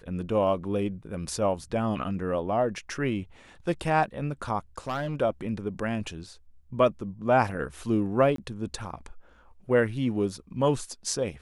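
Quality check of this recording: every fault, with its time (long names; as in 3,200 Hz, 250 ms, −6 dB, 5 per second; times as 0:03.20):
0:04.78–0:05.22: clipping −25.5 dBFS
0:08.36–0:08.38: drop-out 23 ms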